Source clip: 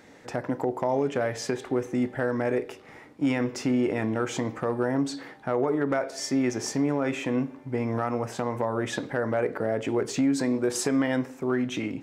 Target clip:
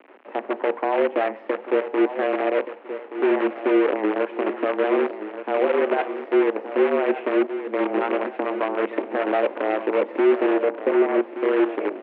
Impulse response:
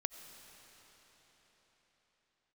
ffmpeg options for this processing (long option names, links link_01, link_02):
-filter_complex "[0:a]aeval=exprs='if(lt(val(0),0),0.708*val(0),val(0))':channel_layout=same,equalizer=frequency=1500:width_type=o:width=2.1:gain=-7.5,acrossover=split=1900[link_01][link_02];[link_01]acontrast=69[link_03];[link_02]alimiter=level_in=8dB:limit=-24dB:level=0:latency=1:release=396,volume=-8dB[link_04];[link_03][link_04]amix=inputs=2:normalize=0,acrossover=split=520[link_05][link_06];[link_05]aeval=exprs='val(0)*(1-0.5/2+0.5/2*cos(2*PI*6.9*n/s))':channel_layout=same[link_07];[link_06]aeval=exprs='val(0)*(1-0.5/2-0.5/2*cos(2*PI*6.9*n/s))':channel_layout=same[link_08];[link_07][link_08]amix=inputs=2:normalize=0,acrusher=bits=5:dc=4:mix=0:aa=0.000001,asettb=1/sr,asplit=3[link_09][link_10][link_11];[link_09]atrim=end=10.534[link_12];[link_10]atrim=start=10.53:end=11.21,asetpts=PTS-STARTPTS,afade=type=in:duration=0.004:curve=qsin,afade=type=out:start_time=0.676:duration=0.004:curve=qsin,adynamicsmooth=sensitivity=1.5:basefreq=770[link_13];[link_11]atrim=start=11.206[link_14];[link_12][link_13]acrossfade=duration=0.004:curve1=hsin:curve2=qsin[link_15];[link_15][link_14]acrossfade=duration=0.004:curve1=qsin:curve2=hsin,aecho=1:1:1175|2350|3525|4700:0.282|0.118|0.0497|0.0209,highpass=frequency=160:width_type=q:width=0.5412,highpass=frequency=160:width_type=q:width=1.307,lowpass=frequency=2600:width_type=q:width=0.5176,lowpass=frequency=2600:width_type=q:width=0.7071,lowpass=frequency=2600:width_type=q:width=1.932,afreqshift=98,volume=3.5dB"